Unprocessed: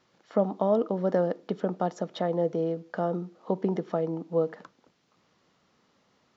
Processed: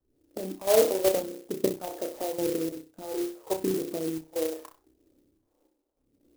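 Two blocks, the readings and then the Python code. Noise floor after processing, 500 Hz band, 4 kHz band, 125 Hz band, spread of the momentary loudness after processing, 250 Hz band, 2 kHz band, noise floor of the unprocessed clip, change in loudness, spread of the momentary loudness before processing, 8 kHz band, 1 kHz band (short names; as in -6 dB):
-75 dBFS, 0.0 dB, +9.5 dB, -10.0 dB, 14 LU, -2.0 dB, +2.0 dB, -69 dBFS, 0.0 dB, 6 LU, n/a, -5.0 dB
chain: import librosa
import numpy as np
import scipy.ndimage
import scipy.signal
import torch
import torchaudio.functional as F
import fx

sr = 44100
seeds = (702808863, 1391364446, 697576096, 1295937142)

p1 = fx.fade_in_head(x, sr, length_s=0.75)
p2 = fx.env_flanger(p1, sr, rest_ms=3.7, full_db=-25.0)
p3 = fx.quant_dither(p2, sr, seeds[0], bits=8, dither='triangular')
p4 = p2 + (p3 * 10.0 ** (-10.5 / 20.0))
p5 = fx.level_steps(p4, sr, step_db=12)
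p6 = fx.chopper(p5, sr, hz=0.67, depth_pct=65, duty_pct=80)
p7 = fx.tilt_shelf(p6, sr, db=8.5, hz=1400.0)
p8 = fx.room_flutter(p7, sr, wall_m=5.4, rt60_s=0.41)
p9 = fx.phaser_stages(p8, sr, stages=2, low_hz=110.0, high_hz=1600.0, hz=0.83, feedback_pct=40)
p10 = fx.low_shelf_res(p9, sr, hz=250.0, db=-7.0, q=3.0)
p11 = fx.env_lowpass(p10, sr, base_hz=340.0, full_db=-28.0)
y = fx.clock_jitter(p11, sr, seeds[1], jitter_ms=0.093)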